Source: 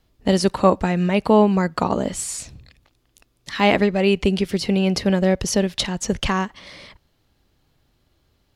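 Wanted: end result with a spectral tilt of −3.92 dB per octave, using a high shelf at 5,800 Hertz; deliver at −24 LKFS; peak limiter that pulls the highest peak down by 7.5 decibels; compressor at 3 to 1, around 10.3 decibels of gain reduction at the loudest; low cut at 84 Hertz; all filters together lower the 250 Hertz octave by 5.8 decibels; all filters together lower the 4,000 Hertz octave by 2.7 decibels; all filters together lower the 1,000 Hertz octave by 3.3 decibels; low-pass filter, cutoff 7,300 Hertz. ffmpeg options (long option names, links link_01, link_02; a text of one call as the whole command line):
ffmpeg -i in.wav -af "highpass=84,lowpass=7300,equalizer=frequency=250:width_type=o:gain=-8.5,equalizer=frequency=1000:width_type=o:gain=-3.5,equalizer=frequency=4000:width_type=o:gain=-5,highshelf=frequency=5800:gain=5,acompressor=threshold=-27dB:ratio=3,volume=8dB,alimiter=limit=-13dB:level=0:latency=1" out.wav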